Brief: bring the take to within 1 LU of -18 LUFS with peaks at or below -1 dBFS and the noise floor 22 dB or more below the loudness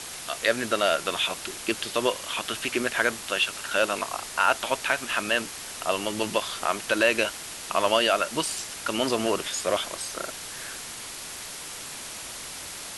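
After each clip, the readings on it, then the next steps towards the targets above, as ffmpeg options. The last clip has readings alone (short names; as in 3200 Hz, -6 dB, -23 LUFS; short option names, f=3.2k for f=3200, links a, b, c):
noise floor -39 dBFS; noise floor target -49 dBFS; loudness -27.0 LUFS; peak -7.0 dBFS; loudness target -18.0 LUFS
-> -af "afftdn=nr=10:nf=-39"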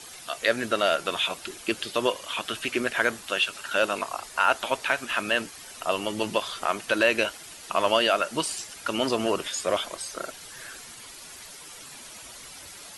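noise floor -44 dBFS; noise floor target -49 dBFS
-> -af "afftdn=nr=6:nf=-44"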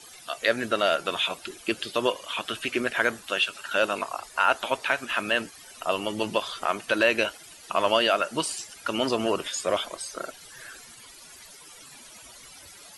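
noise floor -48 dBFS; noise floor target -49 dBFS
-> -af "afftdn=nr=6:nf=-48"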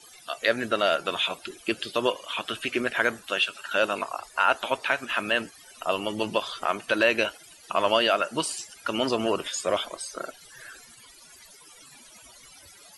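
noise floor -52 dBFS; loudness -26.5 LUFS; peak -7.0 dBFS; loudness target -18.0 LUFS
-> -af "volume=8.5dB,alimiter=limit=-1dB:level=0:latency=1"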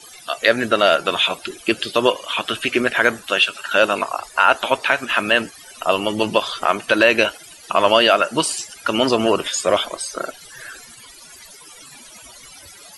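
loudness -18.5 LUFS; peak -1.0 dBFS; noise floor -43 dBFS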